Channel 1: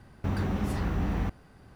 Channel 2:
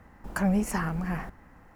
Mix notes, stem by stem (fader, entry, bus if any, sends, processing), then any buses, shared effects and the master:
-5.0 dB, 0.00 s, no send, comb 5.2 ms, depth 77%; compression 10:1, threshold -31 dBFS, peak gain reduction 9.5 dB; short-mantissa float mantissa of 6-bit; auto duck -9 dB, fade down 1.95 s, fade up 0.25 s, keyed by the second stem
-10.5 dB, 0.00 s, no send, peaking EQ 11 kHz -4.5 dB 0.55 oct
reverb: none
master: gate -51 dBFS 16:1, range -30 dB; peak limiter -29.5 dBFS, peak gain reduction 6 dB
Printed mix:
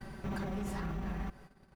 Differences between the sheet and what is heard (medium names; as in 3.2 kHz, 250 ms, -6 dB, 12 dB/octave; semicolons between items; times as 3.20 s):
stem 1 -5.0 dB -> +6.0 dB; stem 2: polarity flipped